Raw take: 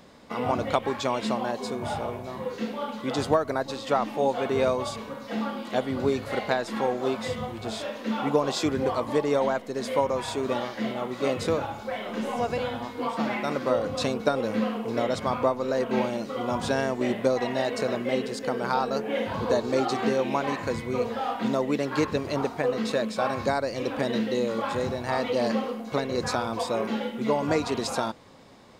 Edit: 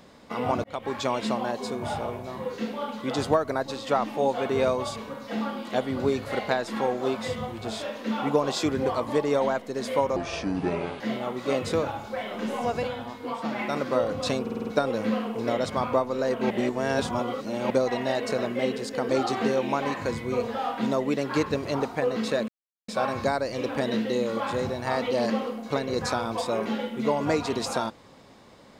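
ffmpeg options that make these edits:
-filter_complex "[0:a]asplit=15[a][b][c][d][e][f][g][h][i][j][k][l][m][n][o];[a]atrim=end=0.64,asetpts=PTS-STARTPTS,afade=t=out:st=0.636:d=0.004:c=hsin[p];[b]atrim=start=0.64:end=10.164,asetpts=PTS-STARTPTS,afade=t=in:d=0.34[q];[c]atrim=start=10.16:end=10.75,asetpts=PTS-STARTPTS,asetrate=30870,aresample=44100[r];[d]atrim=start=10.746:end=12.622[s];[e]atrim=start=12.618:end=13.342,asetpts=PTS-STARTPTS,volume=-3dB[t];[f]atrim=start=13.338:end=14.212[u];[g]atrim=start=14.158:end=14.212[v];[h]atrim=start=14.158:end=14.212[w];[i]atrim=start=14.158:end=14.212[x];[j]atrim=start=14.158:end=14.212[y];[k]atrim=start=14.158:end=16.002[z];[l]atrim=start=15.998:end=17.202,asetpts=PTS-STARTPTS,areverse[aa];[m]atrim=start=17.198:end=18.592[ab];[n]atrim=start=19.708:end=23.1,asetpts=PTS-STARTPTS,afade=t=out:st=3.388:d=0.004:c=hsin,apad=pad_dur=0.4[ac];[o]atrim=start=23.1,asetpts=PTS-STARTPTS,afade=t=in:d=0.004:c=hsin[ad];[p][q]concat=n=2:v=0:a=1[ae];[ae][r]acrossfade=d=0.004:c1=hsin:c2=hsin[af];[af][s]acrossfade=d=0.004:c1=hsin:c2=hsin[ag];[ag][t]acrossfade=d=0.004:c1=hsin:c2=hsin[ah];[ah][u]acrossfade=d=0.004:c1=hsin:c2=hsin[ai];[ai][v]acrossfade=d=0.004:c1=hsin:c2=hsin[aj];[aj][w]acrossfade=d=0.004:c1=hsin:c2=hsin[ak];[ak][x]acrossfade=d=0.004:c1=hsin:c2=hsin[al];[al][y]acrossfade=d=0.004:c1=hsin:c2=hsin[am];[am][z]acrossfade=d=0.004:c1=hsin:c2=hsin[an];[an][aa]acrossfade=d=0.004:c1=hsin:c2=hsin[ao];[ao][ab]acrossfade=d=0.004:c1=hsin:c2=hsin[ap];[ac][ad]concat=n=2:v=0:a=1[aq];[ap][aq]acrossfade=d=0.004:c1=hsin:c2=hsin"

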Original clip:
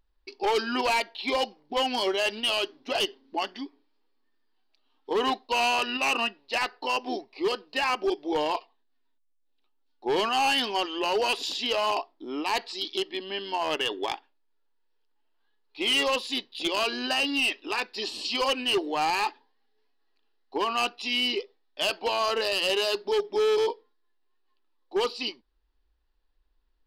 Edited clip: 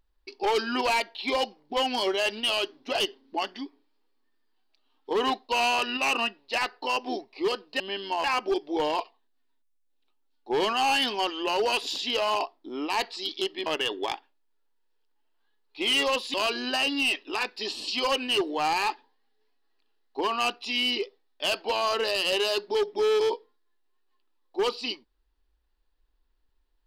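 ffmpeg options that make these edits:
-filter_complex "[0:a]asplit=5[a][b][c][d][e];[a]atrim=end=7.802[f];[b]atrim=start=13.218:end=13.662[g];[c]atrim=start=7.798:end=13.222[h];[d]atrim=start=13.658:end=16.342[i];[e]atrim=start=16.708[j];[f][g]acrossfade=d=0.004:c1=hsin:c2=hsin[k];[k][h]acrossfade=d=0.004:c1=hsin:c2=hsin[l];[l][i]acrossfade=d=0.004:c1=hsin:c2=hsin[m];[m][j]acrossfade=d=0.004:c1=hsin:c2=hsin"

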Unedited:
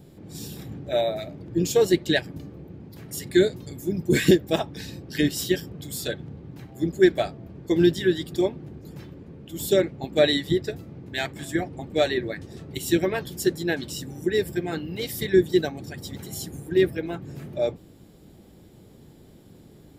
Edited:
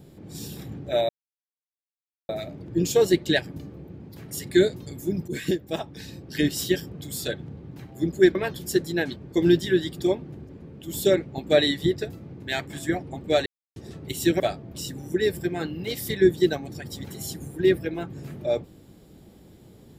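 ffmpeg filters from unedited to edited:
-filter_complex "[0:a]asplit=10[a][b][c][d][e][f][g][h][i][j];[a]atrim=end=1.09,asetpts=PTS-STARTPTS,afade=t=out:st=1.086:d=0.004:c=hsin,apad=pad_dur=1.2[k];[b]atrim=start=1.09:end=4.08,asetpts=PTS-STARTPTS,afade=t=in:d=0.004:c=hsin,afade=t=out:st=2.986:d=0.004:c=hsin:silence=0.237137[l];[c]atrim=start=4.08:end=7.152,asetpts=PTS-STARTPTS,afade=t=in:d=1.28:silence=0.237137[m];[d]atrim=start=13.058:end=13.872[n];[e]atrim=start=7.498:end=8.832[o];[f]atrim=start=9.148:end=12.12,asetpts=PTS-STARTPTS,afade=t=out:st=2.968:d=0.004:c=hsin[p];[g]atrim=start=12.12:end=12.42,asetpts=PTS-STARTPTS,volume=0[q];[h]atrim=start=12.42:end=13.062,asetpts=PTS-STARTPTS,afade=t=in:d=0.004:c=hsin[r];[i]atrim=start=7.148:end=7.502[s];[j]atrim=start=13.868[t];[k][l][m]concat=n=3:v=0:a=1[u];[u][n]acrossfade=d=0.004:c1=hsin:c2=hsin[v];[v][o]acrossfade=d=0.004:c1=hsin:c2=hsin[w];[p][q][r]concat=n=3:v=0:a=1[x];[w][x]acrossfade=d=0.004:c1=hsin:c2=hsin[y];[y][s]acrossfade=d=0.004:c1=hsin:c2=hsin[z];[z][t]acrossfade=d=0.004:c1=hsin:c2=hsin"

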